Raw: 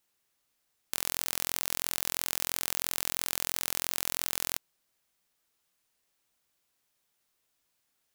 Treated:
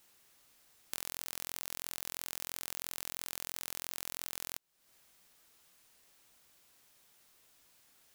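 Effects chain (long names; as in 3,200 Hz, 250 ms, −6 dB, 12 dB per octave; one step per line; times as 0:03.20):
downward compressor 6 to 1, threshold −46 dBFS, peak gain reduction 20 dB
level +11 dB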